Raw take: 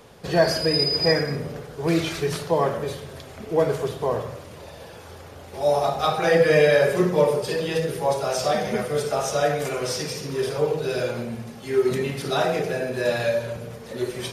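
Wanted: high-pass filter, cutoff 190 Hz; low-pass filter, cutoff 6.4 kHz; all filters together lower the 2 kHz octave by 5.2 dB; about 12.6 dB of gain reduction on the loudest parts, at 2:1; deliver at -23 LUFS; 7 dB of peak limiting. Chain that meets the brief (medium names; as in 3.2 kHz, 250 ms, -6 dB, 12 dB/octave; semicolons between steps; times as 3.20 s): high-pass 190 Hz; low-pass 6.4 kHz; peaking EQ 2 kHz -6.5 dB; compression 2:1, threshold -37 dBFS; trim +13 dB; peak limiter -13 dBFS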